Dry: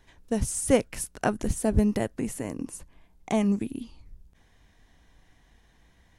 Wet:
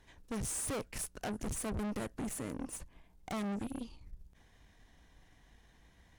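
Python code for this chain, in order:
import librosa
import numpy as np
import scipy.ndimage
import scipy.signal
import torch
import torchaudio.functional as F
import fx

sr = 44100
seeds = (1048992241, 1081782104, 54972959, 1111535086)

y = fx.tube_stage(x, sr, drive_db=36.0, bias=0.65)
y = F.gain(torch.from_numpy(y), 1.0).numpy()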